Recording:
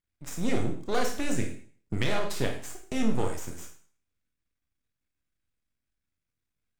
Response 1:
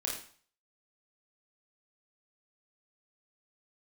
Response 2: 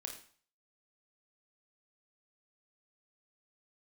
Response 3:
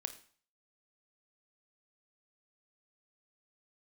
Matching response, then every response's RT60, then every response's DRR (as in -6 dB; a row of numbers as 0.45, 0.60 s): 2; 0.45, 0.45, 0.45 s; -2.5, 2.5, 9.0 dB